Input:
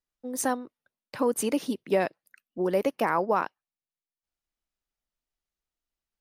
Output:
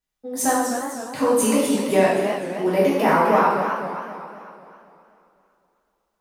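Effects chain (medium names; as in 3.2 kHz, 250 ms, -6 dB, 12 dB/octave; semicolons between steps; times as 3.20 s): two-slope reverb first 0.94 s, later 3.1 s, from -18 dB, DRR -8 dB; modulated delay 256 ms, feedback 50%, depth 174 cents, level -8 dB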